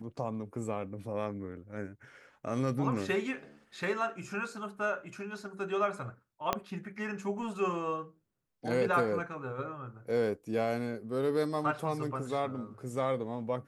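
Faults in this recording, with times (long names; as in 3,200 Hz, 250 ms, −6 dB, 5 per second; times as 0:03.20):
0:06.53: click −13 dBFS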